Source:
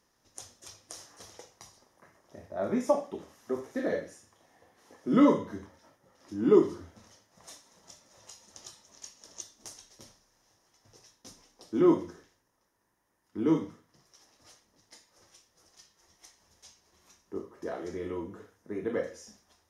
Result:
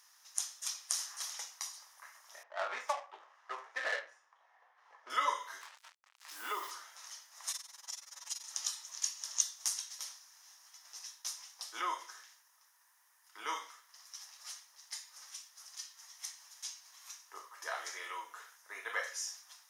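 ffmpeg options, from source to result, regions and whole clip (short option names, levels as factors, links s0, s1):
-filter_complex "[0:a]asettb=1/sr,asplit=3[s0][s1][s2];[s0]atrim=end=2.434[s3];[s1]atrim=start=2.43:end=5.1,asetpts=PTS-STARTPTS,afade=t=in:d=0.004:c=qsin,afade=t=out:st=2.666:d=0.004:c=qsin,adynamicsmooth=sensitivity=7.5:basefreq=1200,asplit=2[s4][s5];[s5]adelay=18,volume=0.224[s6];[s4][s6]amix=inputs=2:normalize=0,atrim=end_sample=117747[s7];[s2]atrim=start=5.096[s8];[s3][s7]acrossfade=d=0.004:c1=hsin:c2=qsin[s9];[s9][s8]acrossfade=d=0.004:c1=qsin:c2=hsin,asettb=1/sr,asplit=3[s10][s11][s12];[s10]atrim=end=5.614[s13];[s11]atrim=start=5.61:end=6.71,asetpts=PTS-STARTPTS,afade=t=in:d=0.004:c=qsin,afade=t=out:st=1.096:d=0.004:c=qsin,lowpass=4800,acompressor=threshold=0.0794:ratio=2.5:attack=3.2:release=140:knee=1:detection=peak,acrusher=bits=8:mix=0:aa=0.5[s14];[s12]atrim=start=6.706[s15];[s13][s14]acrossfade=d=0.004:c1=hsin:c2=qsin[s16];[s16][s15]acrossfade=d=0.004:c1=qsin:c2=hsin,asettb=1/sr,asplit=3[s17][s18][s19];[s17]atrim=end=7.514[s20];[s18]atrim=start=7.51:end=8.44,asetpts=PTS-STARTPTS,afade=t=in:d=0.004:c=qsin,afade=t=out:st=0.926:d=0.004:c=qsin,aecho=1:1:7.1:0.92,atrim=end_sample=41013,tremolo=f=21:d=0.857[s21];[s19]atrim=start=8.436[s22];[s20][s21]acrossfade=d=0.004:c1=hsin:c2=qsin[s23];[s23][s22]acrossfade=d=0.004:c1=qsin:c2=hsin,highshelf=f=4600:g=7,alimiter=limit=0.133:level=0:latency=1:release=487,highpass=f=970:w=0.5412,highpass=f=970:w=1.3066,volume=2.24"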